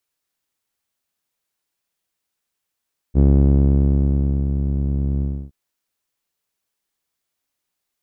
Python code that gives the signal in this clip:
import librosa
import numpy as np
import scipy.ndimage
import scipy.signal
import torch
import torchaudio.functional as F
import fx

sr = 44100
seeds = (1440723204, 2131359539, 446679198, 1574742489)

y = fx.sub_voice(sr, note=37, wave='saw', cutoff_hz=240.0, q=1.0, env_oct=0.5, env_s=1.43, attack_ms=42.0, decay_s=1.27, sustain_db=-8, release_s=0.3, note_s=2.07, slope=12)